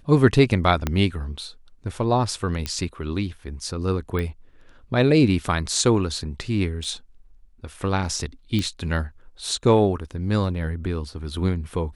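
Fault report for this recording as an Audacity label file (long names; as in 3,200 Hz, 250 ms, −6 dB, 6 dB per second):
0.870000	0.870000	click −9 dBFS
2.660000	2.660000	click −12 dBFS
4.190000	4.190000	click −16 dBFS
6.840000	6.840000	drop-out 3.8 ms
8.590000	8.590000	click −13 dBFS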